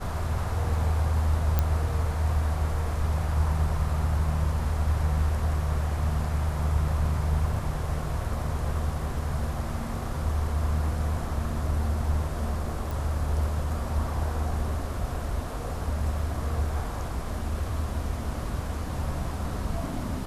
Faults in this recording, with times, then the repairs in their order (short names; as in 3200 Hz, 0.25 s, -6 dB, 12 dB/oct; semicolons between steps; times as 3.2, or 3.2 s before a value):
1.59 pop -10 dBFS
12.91 pop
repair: de-click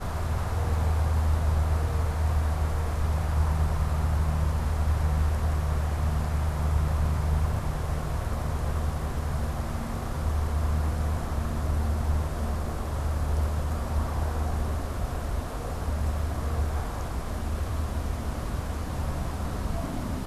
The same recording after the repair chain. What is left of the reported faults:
none